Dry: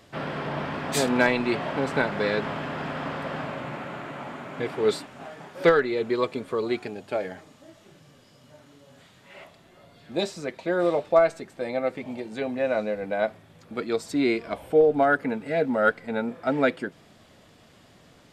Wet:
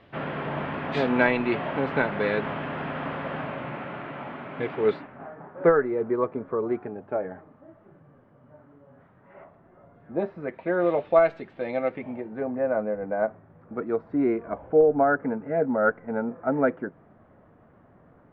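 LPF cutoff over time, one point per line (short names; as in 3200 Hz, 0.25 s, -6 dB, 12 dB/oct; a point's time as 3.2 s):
LPF 24 dB/oct
4.77 s 3100 Hz
5.36 s 1500 Hz
10.14 s 1500 Hz
11.07 s 3200 Hz
11.83 s 3200 Hz
12.4 s 1500 Hz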